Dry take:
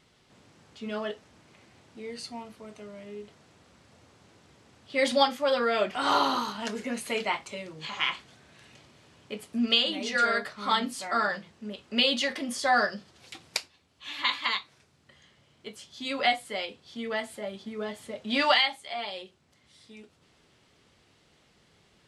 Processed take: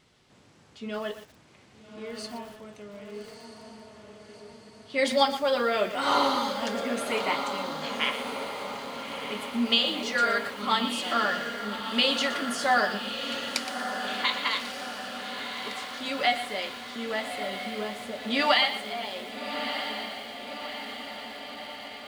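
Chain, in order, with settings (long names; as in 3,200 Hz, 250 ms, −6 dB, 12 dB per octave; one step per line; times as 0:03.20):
feedback delay with all-pass diffusion 1,238 ms, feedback 63%, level −7.5 dB
feedback echo at a low word length 119 ms, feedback 35%, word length 7 bits, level −11 dB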